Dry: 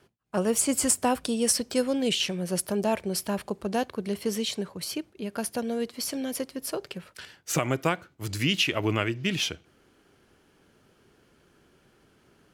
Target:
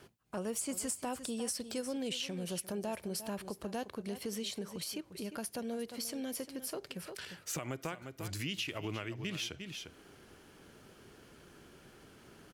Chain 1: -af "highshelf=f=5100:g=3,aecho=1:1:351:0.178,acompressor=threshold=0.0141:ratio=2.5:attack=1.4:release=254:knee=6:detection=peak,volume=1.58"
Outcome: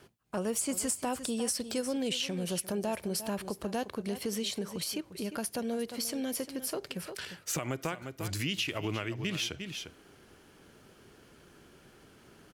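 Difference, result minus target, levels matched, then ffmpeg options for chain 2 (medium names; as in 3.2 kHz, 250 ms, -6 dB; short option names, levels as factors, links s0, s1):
compression: peak gain reduction -5 dB
-af "highshelf=f=5100:g=3,aecho=1:1:351:0.178,acompressor=threshold=0.00531:ratio=2.5:attack=1.4:release=254:knee=6:detection=peak,volume=1.58"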